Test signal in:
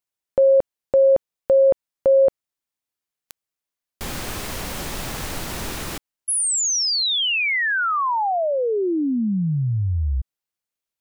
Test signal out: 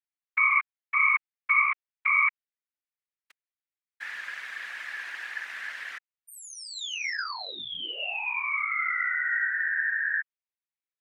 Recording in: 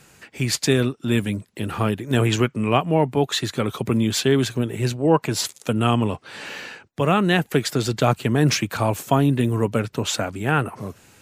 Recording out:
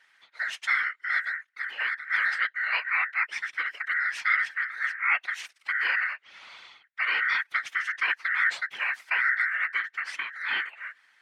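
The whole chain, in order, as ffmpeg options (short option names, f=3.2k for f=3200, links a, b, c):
-af "aeval=exprs='val(0)*sin(2*PI*1700*n/s)':c=same,afftfilt=real='hypot(re,im)*cos(2*PI*random(0))':imag='hypot(re,im)*sin(2*PI*random(1))':win_size=512:overlap=0.75,bandpass=f=2k:t=q:w=1.8:csg=0,volume=3.5dB"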